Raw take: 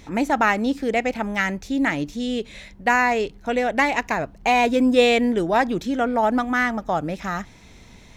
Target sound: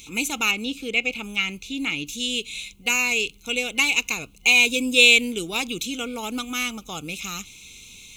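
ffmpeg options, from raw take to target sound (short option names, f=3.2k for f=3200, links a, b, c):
-filter_complex "[0:a]aexciter=amount=7.7:drive=6.3:freq=2.7k,asettb=1/sr,asplit=3[a][b][c];[a]atrim=end=0.514[d];[b]atrim=start=0.51:end=2.07,asetpts=PTS-STARTPTS,afade=t=in:d=0.004:c=qsin,afade=t=out:st=1.556:d=0.004:c=qsin,acrossover=split=4000[e][f];[f]acompressor=threshold=-37dB:ratio=4:attack=1:release=60[g];[e][g]amix=inputs=2:normalize=0[h];[c]atrim=start=2.066[i];[d][h]acrossfade=d=0.004:c1=hsin:c2=qsin[j];[j][i]acrossfade=d=0.004:c1=qsin:c2=hsin,superequalizer=8b=0.282:9b=0.501:11b=0.282:12b=2.51:14b=0.398,volume=-8dB"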